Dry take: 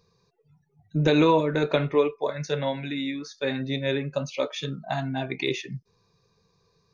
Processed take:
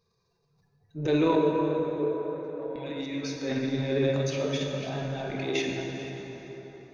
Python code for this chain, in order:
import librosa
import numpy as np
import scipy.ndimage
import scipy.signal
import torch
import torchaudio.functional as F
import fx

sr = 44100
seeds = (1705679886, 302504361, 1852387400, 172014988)

y = fx.reverse_delay(x, sr, ms=306, wet_db=-7.5)
y = fx.ladder_bandpass(y, sr, hz=470.0, resonance_pct=30, at=(1.35, 2.76))
y = fx.dynamic_eq(y, sr, hz=390.0, q=1.3, threshold_db=-36.0, ratio=4.0, max_db=8)
y = fx.transient(y, sr, attack_db=-7, sustain_db=11)
y = fx.rev_plate(y, sr, seeds[0], rt60_s=4.8, hf_ratio=0.55, predelay_ms=0, drr_db=0.5)
y = y * 10.0 ** (-9.0 / 20.0)